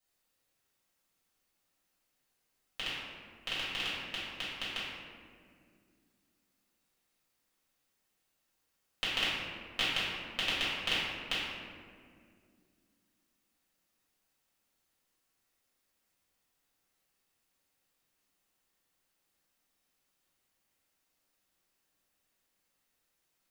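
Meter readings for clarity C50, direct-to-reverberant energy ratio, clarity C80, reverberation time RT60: -1.5 dB, -11.0 dB, 0.5 dB, 2.1 s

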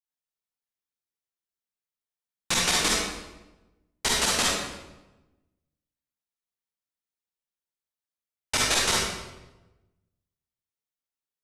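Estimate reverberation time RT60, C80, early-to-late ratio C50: 1.1 s, 2.0 dB, -2.0 dB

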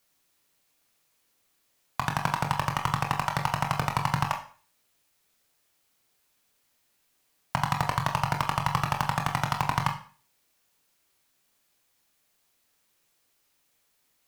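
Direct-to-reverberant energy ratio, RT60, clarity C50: 3.0 dB, 0.40 s, 11.0 dB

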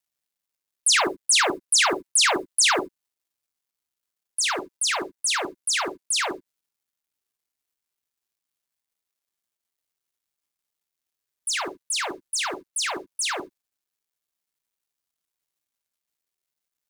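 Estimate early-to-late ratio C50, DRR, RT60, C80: 9.0 dB, 5.5 dB, no single decay rate, 17.0 dB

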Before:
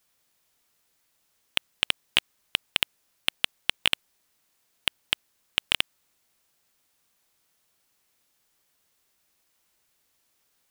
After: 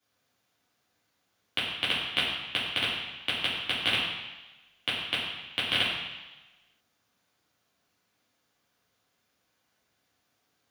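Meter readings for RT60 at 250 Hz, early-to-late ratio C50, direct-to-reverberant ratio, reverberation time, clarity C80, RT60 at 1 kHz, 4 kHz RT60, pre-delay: 1.0 s, 1.5 dB, -9.0 dB, 1.1 s, 3.5 dB, 1.2 s, 1.2 s, 3 ms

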